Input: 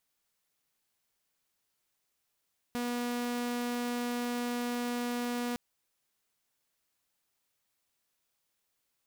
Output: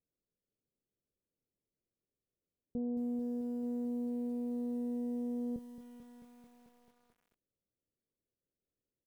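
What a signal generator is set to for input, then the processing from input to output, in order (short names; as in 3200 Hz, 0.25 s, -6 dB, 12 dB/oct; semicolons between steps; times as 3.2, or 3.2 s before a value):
tone saw 242 Hz -29 dBFS 2.81 s
steep low-pass 530 Hz 36 dB/oct; doubler 26 ms -12 dB; lo-fi delay 0.22 s, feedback 80%, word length 10-bit, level -11.5 dB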